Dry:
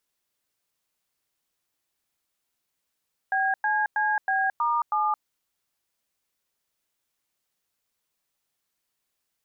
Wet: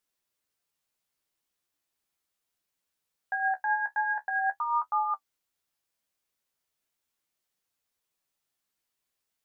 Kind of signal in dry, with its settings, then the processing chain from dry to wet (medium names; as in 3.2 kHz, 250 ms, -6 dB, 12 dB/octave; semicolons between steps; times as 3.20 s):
DTMF "BCCB*7", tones 220 ms, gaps 100 ms, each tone -24 dBFS
flange 0.39 Hz, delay 9.9 ms, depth 6 ms, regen +35%